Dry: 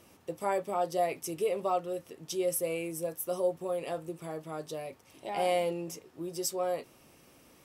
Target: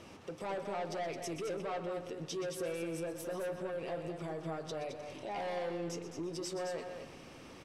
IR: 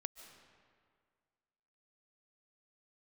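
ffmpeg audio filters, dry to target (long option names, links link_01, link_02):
-filter_complex "[0:a]asoftclip=type=tanh:threshold=-32.5dB,lowpass=5400,acompressor=threshold=-41dB:ratio=6,asplit=2[link_01][link_02];[1:a]atrim=start_sample=2205,adelay=123[link_03];[link_02][link_03]afir=irnorm=-1:irlink=0,volume=-9.5dB[link_04];[link_01][link_04]amix=inputs=2:normalize=0,alimiter=level_in=16.5dB:limit=-24dB:level=0:latency=1:release=169,volume=-16.5dB,asplit=2[link_05][link_06];[link_06]aecho=0:1:216:0.422[link_07];[link_05][link_07]amix=inputs=2:normalize=0,volume=7dB"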